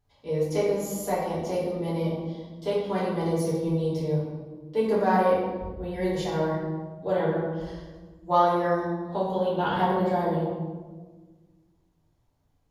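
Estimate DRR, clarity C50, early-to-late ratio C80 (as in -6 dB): -8.5 dB, 0.5 dB, 3.0 dB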